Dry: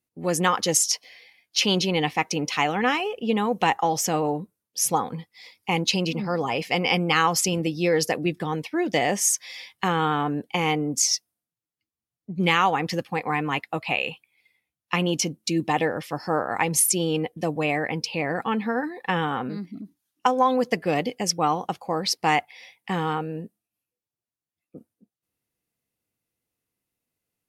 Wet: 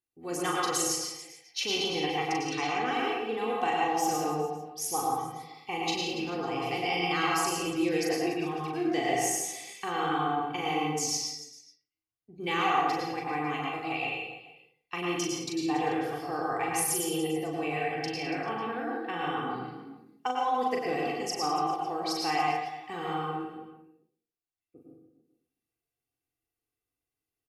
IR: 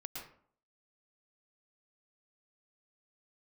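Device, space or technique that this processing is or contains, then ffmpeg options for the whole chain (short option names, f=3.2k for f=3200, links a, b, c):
microphone above a desk: -filter_complex "[0:a]aecho=1:1:2.6:0.69[a];[1:a]atrim=start_sample=2205[b];[a][b]afir=irnorm=-1:irlink=0,asettb=1/sr,asplit=3[c][d][e];[c]atrim=end=2.464[f];[d]atrim=start=2.46:end=2.87,asetpts=PTS-STARTPTS,afade=t=in:d=0.004:c=qsin,afade=t=out:st=0.406:d=0.004:c=qsin,lowpass=f=8.6k:w=0.5412,lowpass=f=8.6k:w=1.3066[g];[e]atrim=start=2.866[h];[f][g]acrossfade=d=0.004:c1=hsin:c2=qsin[i];[i][h]acrossfade=d=0.004:c1=qsin:c2=hsin,aecho=1:1:40|96|174.4|284.2|437.8:0.631|0.398|0.251|0.158|0.1,volume=-7.5dB"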